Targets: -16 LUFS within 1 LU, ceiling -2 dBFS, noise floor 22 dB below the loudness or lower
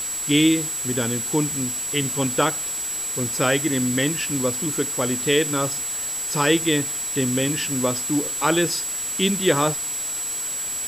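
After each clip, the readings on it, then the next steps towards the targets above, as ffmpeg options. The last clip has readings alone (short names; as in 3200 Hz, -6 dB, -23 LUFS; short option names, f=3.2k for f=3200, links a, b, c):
steady tone 7800 Hz; tone level -26 dBFS; noise floor -28 dBFS; noise floor target -44 dBFS; loudness -21.5 LUFS; peak -6.5 dBFS; loudness target -16.0 LUFS
-> -af "bandreject=f=7.8k:w=30"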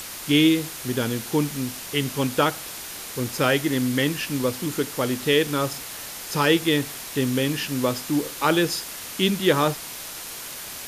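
steady tone none; noise floor -36 dBFS; noise floor target -46 dBFS
-> -af "afftdn=nr=10:nf=-36"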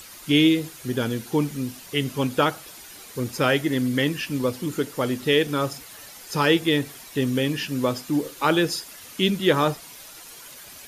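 noise floor -44 dBFS; noise floor target -46 dBFS
-> -af "afftdn=nr=6:nf=-44"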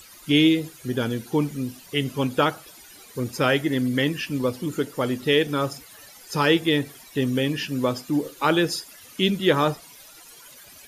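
noise floor -48 dBFS; loudness -23.5 LUFS; peak -7.5 dBFS; loudness target -16.0 LUFS
-> -af "volume=7.5dB,alimiter=limit=-2dB:level=0:latency=1"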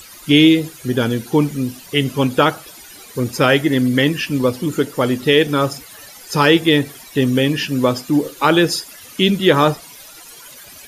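loudness -16.5 LUFS; peak -2.0 dBFS; noise floor -40 dBFS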